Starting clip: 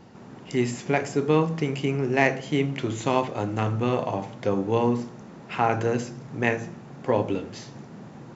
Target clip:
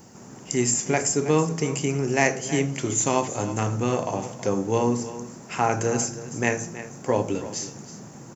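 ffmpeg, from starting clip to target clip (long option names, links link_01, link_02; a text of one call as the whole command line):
ffmpeg -i in.wav -filter_complex "[0:a]aexciter=amount=11:drive=3.1:freq=5600,asplit=2[link_01][link_02];[link_02]aecho=0:1:322:0.2[link_03];[link_01][link_03]amix=inputs=2:normalize=0" out.wav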